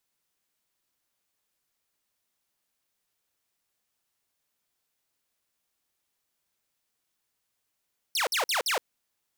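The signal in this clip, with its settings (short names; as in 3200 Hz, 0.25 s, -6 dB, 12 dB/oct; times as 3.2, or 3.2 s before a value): burst of laser zaps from 6000 Hz, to 420 Hz, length 0.12 s saw, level -21.5 dB, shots 4, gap 0.05 s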